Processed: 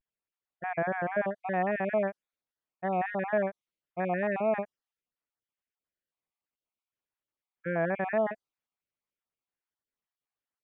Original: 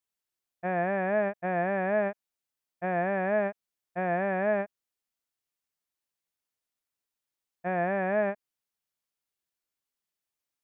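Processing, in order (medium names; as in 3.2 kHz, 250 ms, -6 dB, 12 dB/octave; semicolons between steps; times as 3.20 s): random holes in the spectrogram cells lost 33%; vibrato 0.75 Hz 86 cents; level-controlled noise filter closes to 2.4 kHz, open at -25 dBFS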